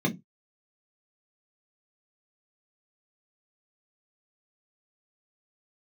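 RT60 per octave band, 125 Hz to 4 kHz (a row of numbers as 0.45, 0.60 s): 0.25, 0.25, 0.20, 0.15, 0.15, 0.10 s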